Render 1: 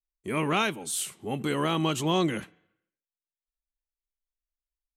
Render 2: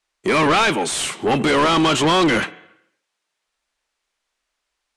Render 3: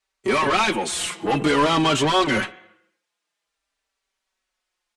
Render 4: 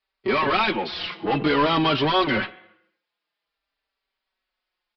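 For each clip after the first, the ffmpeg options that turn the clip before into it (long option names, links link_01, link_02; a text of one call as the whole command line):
ffmpeg -i in.wav -filter_complex "[0:a]asplit=2[link_01][link_02];[link_02]highpass=frequency=720:poles=1,volume=29dB,asoftclip=type=tanh:threshold=-12.5dB[link_03];[link_01][link_03]amix=inputs=2:normalize=0,lowpass=frequency=2800:poles=1,volume=-6dB,lowpass=frequency=10000:width=0.5412,lowpass=frequency=10000:width=1.3066,volume=4dB" out.wav
ffmpeg -i in.wav -filter_complex "[0:a]asplit=2[link_01][link_02];[link_02]adelay=4.7,afreqshift=-0.5[link_03];[link_01][link_03]amix=inputs=2:normalize=1" out.wav
ffmpeg -i in.wav -af "aresample=11025,aresample=44100,volume=-1.5dB" out.wav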